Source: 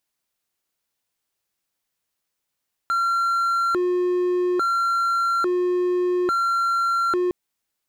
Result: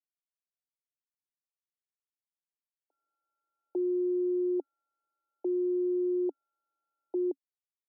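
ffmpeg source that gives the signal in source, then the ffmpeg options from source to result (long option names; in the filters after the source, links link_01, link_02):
-f lavfi -i "aevalsrc='0.15*(1-4*abs(mod((864.5*t+505.5/0.59*(0.5-abs(mod(0.59*t,1)-0.5)))+0.25,1)-0.5))':duration=4.41:sample_rate=44100"
-af "agate=range=-33dB:threshold=-15dB:ratio=3:detection=peak,asuperpass=centerf=490:order=20:qfactor=0.81"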